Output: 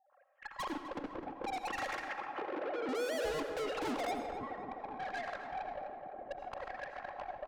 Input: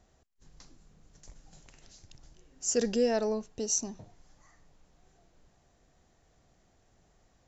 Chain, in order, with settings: sine-wave speech; recorder AGC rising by 79 dB/s; comb 3.7 ms, depth 62%; sample leveller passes 3; limiter -21 dBFS, peak gain reduction 9.5 dB; LFO low-pass sine 0.62 Hz 350–1800 Hz; tube stage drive 41 dB, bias 0.25; 2.01–2.89 BPF 240–2600 Hz; tape echo 0.257 s, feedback 84%, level -5.5 dB, low-pass 1500 Hz; digital reverb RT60 0.7 s, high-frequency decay 0.9×, pre-delay 45 ms, DRR 8.5 dB; gain +4.5 dB

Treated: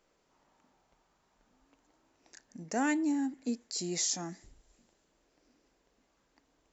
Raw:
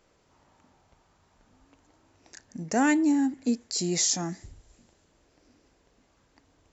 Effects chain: bell 89 Hz -13.5 dB 0.98 oct; gain -6.5 dB

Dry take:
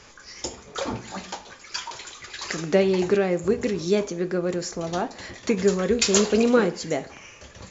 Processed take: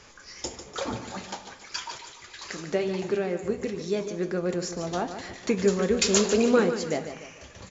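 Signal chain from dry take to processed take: 1.98–4.14 flange 1 Hz, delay 6.7 ms, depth 3.1 ms, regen -69%; feedback echo 0.147 s, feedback 40%, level -10 dB; gain -2.5 dB

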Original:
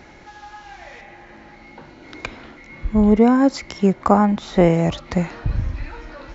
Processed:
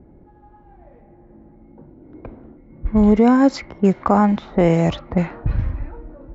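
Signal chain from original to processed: low-pass opened by the level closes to 320 Hz, open at -11.5 dBFS; maximiser +5.5 dB; gain -4 dB

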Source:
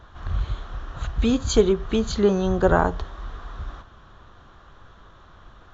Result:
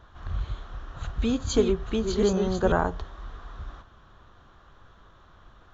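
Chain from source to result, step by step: 0.6–2.72 reverse delay 0.433 s, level -5 dB; gain -5 dB

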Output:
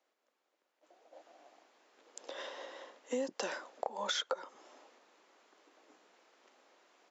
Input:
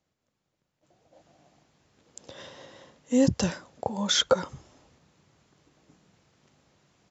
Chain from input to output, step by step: Bessel high-pass 510 Hz, order 8; high shelf 3600 Hz -10.5 dB; compressor 10:1, threshold -37 dBFS, peak gain reduction 18.5 dB; gain +4.5 dB

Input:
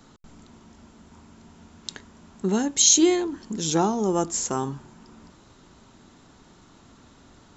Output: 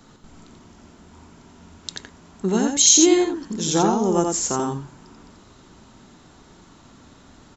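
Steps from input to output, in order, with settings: echo 87 ms -3.5 dB; gain +2 dB

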